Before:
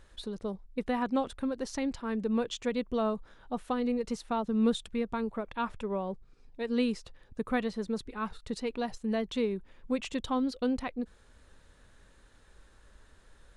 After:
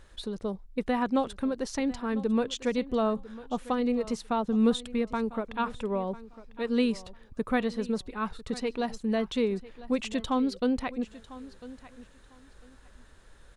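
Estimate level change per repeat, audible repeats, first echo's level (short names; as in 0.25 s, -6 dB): -14.0 dB, 2, -17.5 dB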